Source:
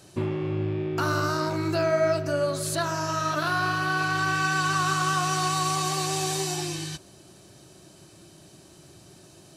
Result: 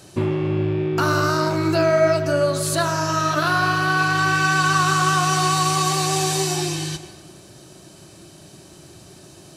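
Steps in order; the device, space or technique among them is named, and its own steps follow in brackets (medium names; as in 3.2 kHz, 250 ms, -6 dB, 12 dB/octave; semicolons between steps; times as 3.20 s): saturated reverb return (on a send at -10.5 dB: reverberation RT60 1.5 s, pre-delay 81 ms + saturation -20 dBFS, distortion -15 dB); on the sum: trim +6 dB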